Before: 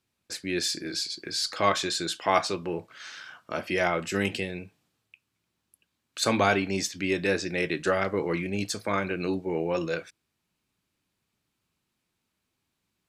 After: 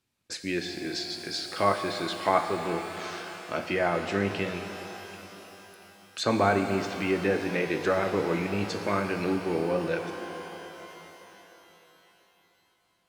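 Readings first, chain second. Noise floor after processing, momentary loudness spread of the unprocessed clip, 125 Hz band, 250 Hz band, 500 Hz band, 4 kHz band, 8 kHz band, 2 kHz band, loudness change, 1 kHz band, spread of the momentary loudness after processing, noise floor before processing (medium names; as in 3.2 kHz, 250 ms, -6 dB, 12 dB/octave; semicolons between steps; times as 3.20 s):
-68 dBFS, 11 LU, +1.0 dB, +1.0 dB, +1.0 dB, -4.0 dB, -8.0 dB, -1.5 dB, -1.0 dB, +0.5 dB, 17 LU, -80 dBFS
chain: low-pass that closes with the level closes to 1.6 kHz, closed at -22.5 dBFS; pitch-shifted reverb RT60 3.8 s, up +12 st, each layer -8 dB, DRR 6 dB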